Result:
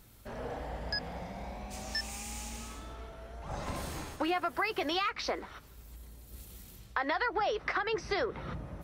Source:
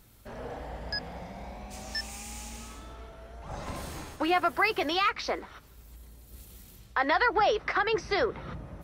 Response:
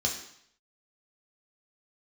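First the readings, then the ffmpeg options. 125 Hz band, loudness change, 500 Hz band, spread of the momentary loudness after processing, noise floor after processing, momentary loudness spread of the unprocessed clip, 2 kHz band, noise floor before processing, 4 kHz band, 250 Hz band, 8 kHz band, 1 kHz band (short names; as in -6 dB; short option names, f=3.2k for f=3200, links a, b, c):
-0.5 dB, -6.0 dB, -5.0 dB, 19 LU, -54 dBFS, 21 LU, -5.5 dB, -53 dBFS, -3.5 dB, -3.5 dB, -0.5 dB, -6.0 dB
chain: -af "acompressor=threshold=-29dB:ratio=4"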